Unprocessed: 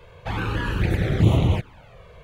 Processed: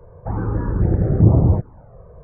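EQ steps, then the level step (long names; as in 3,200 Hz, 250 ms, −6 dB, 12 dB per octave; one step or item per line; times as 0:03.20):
Gaussian smoothing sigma 8.5 samples
+5.0 dB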